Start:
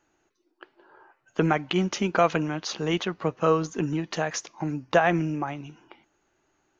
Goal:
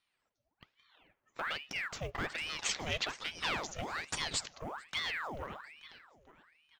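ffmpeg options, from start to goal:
-filter_complex "[0:a]bandreject=f=450:w=14,aecho=1:1:440|880|1320|1760:0.126|0.0592|0.0278|0.0131,asoftclip=type=tanh:threshold=-19.5dB,acrusher=bits=8:mode=log:mix=0:aa=0.000001,asettb=1/sr,asplit=3[a][b][c];[a]atrim=end=2.384[d];[b]atrim=start=2.38:end=4.58,asetpts=PTS-STARTPTS,afade=t=in:d=0.004:c=qsin,afade=t=out:st=2.196:d=0.004:c=qsin,equalizer=f=3.7k:t=o:w=2.8:g=12.5[e];[c]atrim=start=4.576[f];[d][e]acrossfade=d=0.004:c1=hsin:c2=qsin[g];[g][f]acrossfade=d=0.004:c1=qsin:c2=hsin,aeval=exprs='val(0)*sin(2*PI*1500*n/s+1500*0.85/1.2*sin(2*PI*1.2*n/s))':c=same,volume=-9dB"

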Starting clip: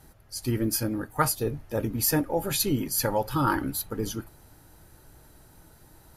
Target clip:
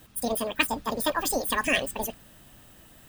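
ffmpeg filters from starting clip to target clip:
-filter_complex "[0:a]acrossover=split=3500[a][b];[b]acompressor=threshold=-34dB:ratio=4:attack=1:release=60[c];[a][c]amix=inputs=2:normalize=0,asetrate=88200,aresample=44100,highshelf=f=3.4k:g=10.5,volume=-1.5dB"

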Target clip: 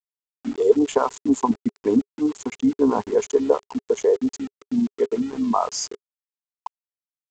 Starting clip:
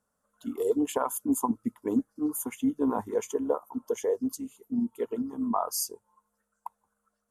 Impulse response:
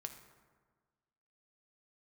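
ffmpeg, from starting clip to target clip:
-af "aresample=16000,aeval=exprs='val(0)*gte(abs(val(0)),0.00708)':c=same,aresample=44100,adynamicequalizer=threshold=0.00562:dfrequency=410:dqfactor=7.9:tfrequency=410:tqfactor=7.9:attack=5:release=100:ratio=0.375:range=3.5:mode=boostabove:tftype=bell,volume=7dB"

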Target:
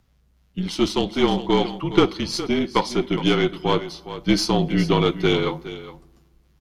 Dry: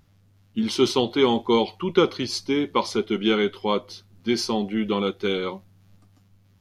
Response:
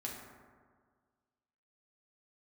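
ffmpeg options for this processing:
-filter_complex "[0:a]asplit=2[a][b];[1:a]atrim=start_sample=2205[c];[b][c]afir=irnorm=-1:irlink=0,volume=-18dB[d];[a][d]amix=inputs=2:normalize=0,afreqshift=-37,aeval=exprs='0.562*(cos(1*acos(clip(val(0)/0.562,-1,1)))-cos(1*PI/2))+0.0562*(cos(3*acos(clip(val(0)/0.562,-1,1)))-cos(3*PI/2))+0.0282*(cos(6*acos(clip(val(0)/0.562,-1,1)))-cos(6*PI/2))':c=same,aecho=1:1:413:0.211,dynaudnorm=f=280:g=11:m=11.5dB"

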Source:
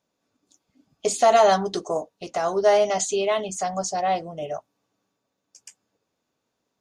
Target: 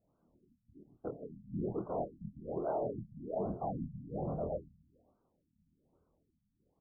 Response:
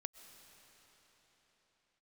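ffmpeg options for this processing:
-filter_complex "[0:a]aemphasis=mode=reproduction:type=bsi,areverse,acompressor=threshold=-30dB:ratio=8,areverse,flanger=delay=9.8:depth=5.3:regen=-84:speed=0.33:shape=triangular,afftfilt=real='hypot(re,im)*cos(2*PI*random(0))':imag='hypot(re,im)*sin(2*PI*random(1))':win_size=512:overlap=0.75,asoftclip=type=tanh:threshold=-38.5dB,asplit=2[a][b];[b]adelay=25,volume=-4.5dB[c];[a][c]amix=inputs=2:normalize=0,asplit=2[d][e];[e]adelay=135,lowpass=f=2k:p=1,volume=-15dB,asplit=2[f][g];[g]adelay=135,lowpass=f=2k:p=1,volume=0.43,asplit=2[h][i];[i]adelay=135,lowpass=f=2k:p=1,volume=0.43,asplit=2[j][k];[k]adelay=135,lowpass=f=2k:p=1,volume=0.43[l];[f][h][j][l]amix=inputs=4:normalize=0[m];[d][m]amix=inputs=2:normalize=0,afftfilt=real='re*lt(b*sr/1024,240*pow(1600/240,0.5+0.5*sin(2*PI*1.2*pts/sr)))':imag='im*lt(b*sr/1024,240*pow(1600/240,0.5+0.5*sin(2*PI*1.2*pts/sr)))':win_size=1024:overlap=0.75,volume=8.5dB"

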